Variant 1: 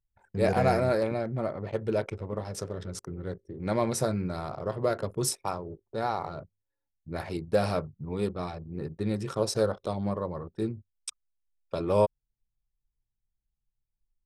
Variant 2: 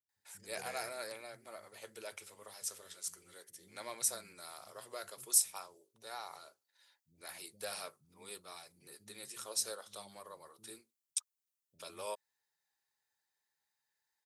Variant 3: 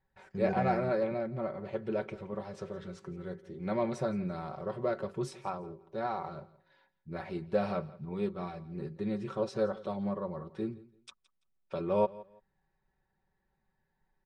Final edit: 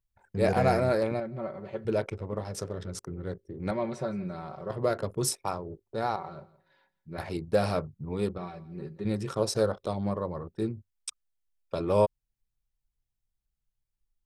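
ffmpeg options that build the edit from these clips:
-filter_complex "[2:a]asplit=4[a][b][c][d];[0:a]asplit=5[e][f][g][h][i];[e]atrim=end=1.202[j];[a]atrim=start=1.198:end=1.852[k];[f]atrim=start=1.848:end=3.712[l];[b]atrim=start=3.708:end=4.702[m];[g]atrim=start=4.698:end=6.162[n];[c]atrim=start=6.158:end=7.182[o];[h]atrim=start=7.178:end=8.382[p];[d]atrim=start=8.378:end=9.052[q];[i]atrim=start=9.048[r];[j][k]acrossfade=d=0.004:c1=hsin:c2=hsin[s];[s][l]acrossfade=d=0.004:c1=hsin:c2=hsin[t];[t][m]acrossfade=d=0.004:c1=hsin:c2=hsin[u];[u][n]acrossfade=d=0.004:c1=hsin:c2=hsin[v];[v][o]acrossfade=d=0.004:c1=hsin:c2=hsin[w];[w][p]acrossfade=d=0.004:c1=hsin:c2=hsin[x];[x][q]acrossfade=d=0.004:c1=hsin:c2=hsin[y];[y][r]acrossfade=d=0.004:c1=hsin:c2=hsin"

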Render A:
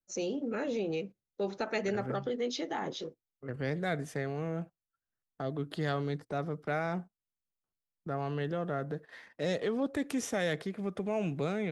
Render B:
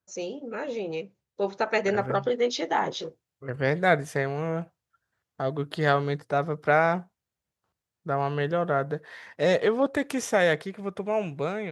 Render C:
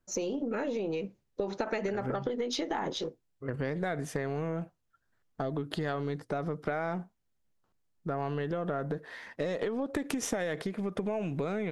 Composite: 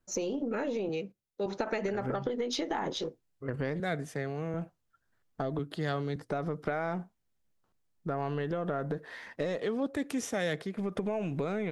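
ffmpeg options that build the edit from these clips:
-filter_complex "[0:a]asplit=4[a][b][c][d];[2:a]asplit=5[e][f][g][h][i];[e]atrim=end=0.892[j];[a]atrim=start=0.888:end=1.462[k];[f]atrim=start=1.458:end=3.802[l];[b]atrim=start=3.798:end=4.542[m];[g]atrim=start=4.538:end=5.592[n];[c]atrim=start=5.588:end=6.162[o];[h]atrim=start=6.158:end=9.582[p];[d]atrim=start=9.578:end=10.772[q];[i]atrim=start=10.768[r];[j][k]acrossfade=d=0.004:c1=hsin:c2=hsin[s];[s][l]acrossfade=d=0.004:c1=hsin:c2=hsin[t];[t][m]acrossfade=d=0.004:c1=hsin:c2=hsin[u];[u][n]acrossfade=d=0.004:c1=hsin:c2=hsin[v];[v][o]acrossfade=d=0.004:c1=hsin:c2=hsin[w];[w][p]acrossfade=d=0.004:c1=hsin:c2=hsin[x];[x][q]acrossfade=d=0.004:c1=hsin:c2=hsin[y];[y][r]acrossfade=d=0.004:c1=hsin:c2=hsin"

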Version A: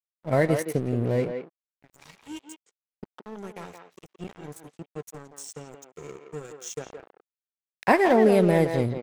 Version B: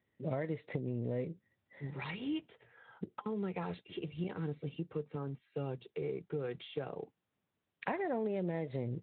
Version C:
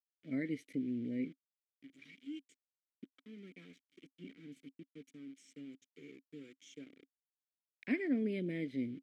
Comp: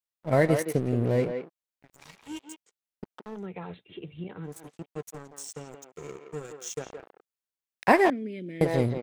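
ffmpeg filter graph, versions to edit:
-filter_complex "[0:a]asplit=3[a][b][c];[a]atrim=end=3.47[d];[1:a]atrim=start=3.31:end=4.58[e];[b]atrim=start=4.42:end=8.102[f];[2:a]atrim=start=8.098:end=8.612[g];[c]atrim=start=8.608[h];[d][e]acrossfade=d=0.16:c1=tri:c2=tri[i];[i][f]acrossfade=d=0.16:c1=tri:c2=tri[j];[j][g]acrossfade=d=0.004:c1=hsin:c2=hsin[k];[k][h]acrossfade=d=0.004:c1=hsin:c2=hsin"

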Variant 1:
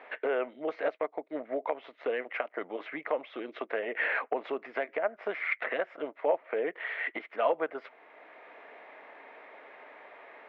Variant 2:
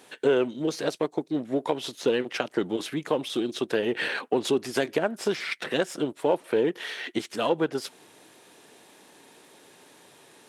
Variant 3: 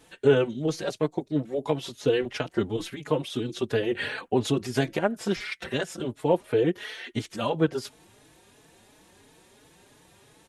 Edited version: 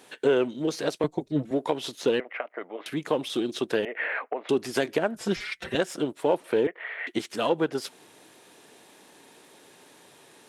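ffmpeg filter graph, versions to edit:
-filter_complex "[2:a]asplit=2[a][b];[0:a]asplit=3[c][d][e];[1:a]asplit=6[f][g][h][i][j][k];[f]atrim=end=1.042[l];[a]atrim=start=1.038:end=1.512[m];[g]atrim=start=1.508:end=2.202[n];[c]atrim=start=2.198:end=2.862[o];[h]atrim=start=2.858:end=3.852[p];[d]atrim=start=3.848:end=4.492[q];[i]atrim=start=4.488:end=5.152[r];[b]atrim=start=5.148:end=5.752[s];[j]atrim=start=5.748:end=6.672[t];[e]atrim=start=6.668:end=7.072[u];[k]atrim=start=7.068[v];[l][m]acrossfade=d=0.004:c1=hsin:c2=hsin[w];[w][n]acrossfade=d=0.004:c1=hsin:c2=hsin[x];[x][o]acrossfade=d=0.004:c1=hsin:c2=hsin[y];[y][p]acrossfade=d=0.004:c1=hsin:c2=hsin[z];[z][q]acrossfade=d=0.004:c1=hsin:c2=hsin[aa];[aa][r]acrossfade=d=0.004:c1=hsin:c2=hsin[ab];[ab][s]acrossfade=d=0.004:c1=hsin:c2=hsin[ac];[ac][t]acrossfade=d=0.004:c1=hsin:c2=hsin[ad];[ad][u]acrossfade=d=0.004:c1=hsin:c2=hsin[ae];[ae][v]acrossfade=d=0.004:c1=hsin:c2=hsin"

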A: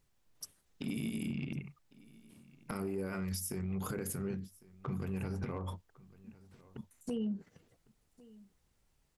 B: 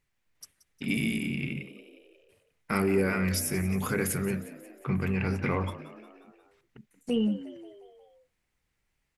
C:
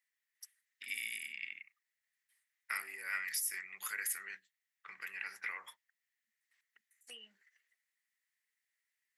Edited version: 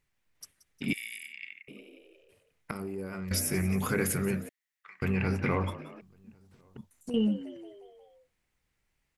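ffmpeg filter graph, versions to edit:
-filter_complex "[2:a]asplit=2[a][b];[0:a]asplit=2[c][d];[1:a]asplit=5[e][f][g][h][i];[e]atrim=end=0.932[j];[a]atrim=start=0.928:end=1.682[k];[f]atrim=start=1.678:end=2.712[l];[c]atrim=start=2.708:end=3.312[m];[g]atrim=start=3.308:end=4.492[n];[b]atrim=start=4.488:end=5.022[o];[h]atrim=start=5.018:end=6.012[p];[d]atrim=start=6.008:end=7.142[q];[i]atrim=start=7.138[r];[j][k]acrossfade=d=0.004:c1=hsin:c2=hsin[s];[s][l]acrossfade=d=0.004:c1=hsin:c2=hsin[t];[t][m]acrossfade=d=0.004:c1=hsin:c2=hsin[u];[u][n]acrossfade=d=0.004:c1=hsin:c2=hsin[v];[v][o]acrossfade=d=0.004:c1=hsin:c2=hsin[w];[w][p]acrossfade=d=0.004:c1=hsin:c2=hsin[x];[x][q]acrossfade=d=0.004:c1=hsin:c2=hsin[y];[y][r]acrossfade=d=0.004:c1=hsin:c2=hsin"

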